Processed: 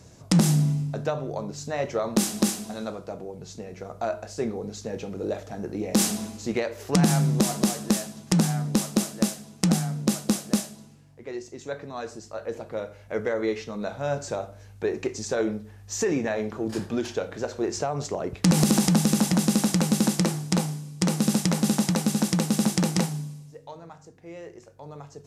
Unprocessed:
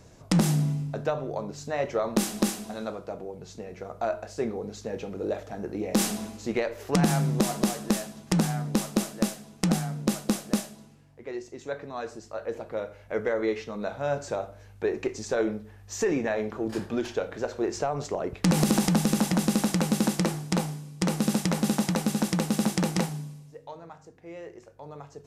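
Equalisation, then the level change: high-pass 57 Hz; tone controls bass +4 dB, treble +7 dB; treble shelf 12 kHz -7.5 dB; 0.0 dB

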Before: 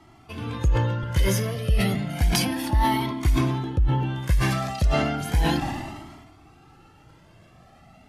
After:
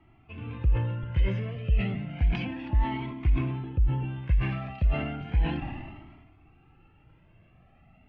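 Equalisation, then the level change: four-pole ladder low-pass 2.9 kHz, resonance 65%; tilt EQ -2.5 dB/octave; -1.5 dB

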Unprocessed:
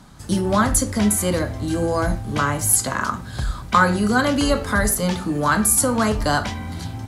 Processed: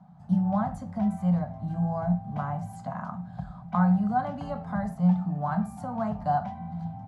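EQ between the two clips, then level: two resonant band-passes 360 Hz, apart 2.1 oct; bass shelf 360 Hz +4.5 dB; band-stop 510 Hz, Q 12; 0.0 dB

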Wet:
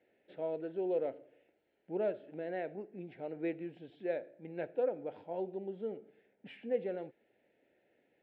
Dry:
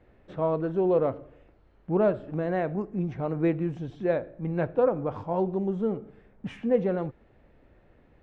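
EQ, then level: high-pass 420 Hz 12 dB/octave; distance through air 56 m; static phaser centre 2.7 kHz, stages 4; -5.0 dB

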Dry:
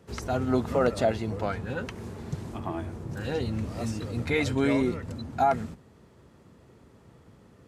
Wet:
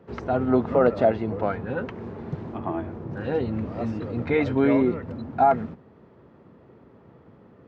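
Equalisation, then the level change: high-pass 250 Hz 6 dB/octave; tape spacing loss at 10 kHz 43 dB; +8.5 dB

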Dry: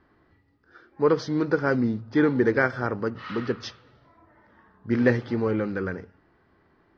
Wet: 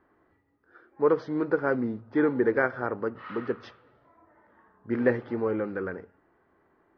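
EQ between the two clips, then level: tone controls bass -10 dB, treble -14 dB; treble shelf 2.2 kHz -9.5 dB; 0.0 dB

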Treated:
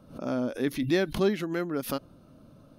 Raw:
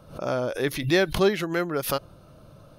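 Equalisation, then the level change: peaking EQ 250 Hz +14 dB 0.65 oct; -7.5 dB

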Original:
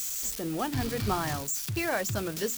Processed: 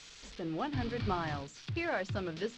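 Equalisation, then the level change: low-pass 4.2 kHz 24 dB/octave; -4.5 dB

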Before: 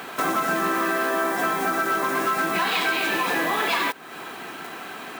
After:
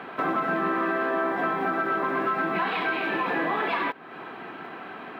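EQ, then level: high-pass 88 Hz; distance through air 470 m; 0.0 dB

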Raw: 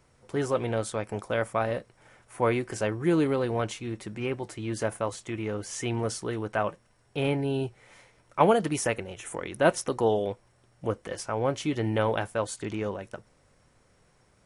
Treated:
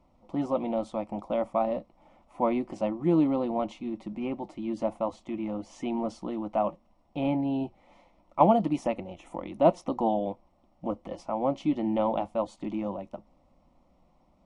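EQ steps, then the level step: tape spacing loss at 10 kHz 21 dB; treble shelf 3.8 kHz -10 dB; static phaser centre 430 Hz, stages 6; +5.0 dB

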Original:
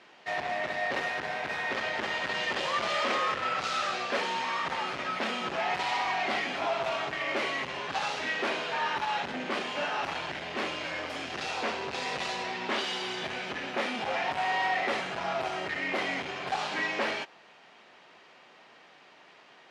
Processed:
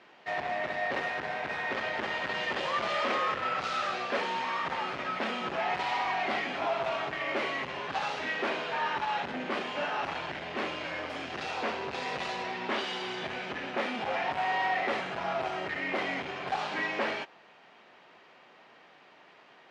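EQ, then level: treble shelf 5 kHz -11 dB; 0.0 dB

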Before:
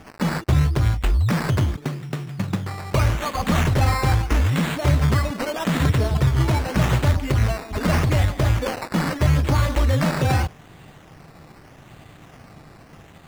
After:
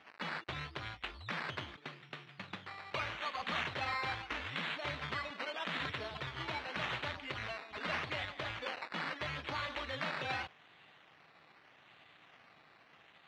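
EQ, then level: band-pass filter 5.1 kHz, Q 1.7; distance through air 380 m; peaking EQ 5 kHz -10 dB 0.41 oct; +7.5 dB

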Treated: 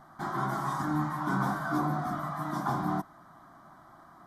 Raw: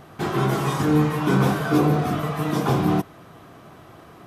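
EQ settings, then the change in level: peaking EQ 93 Hz -15 dB 1.6 oct; treble shelf 4.1 kHz -10.5 dB; static phaser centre 1.1 kHz, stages 4; -2.5 dB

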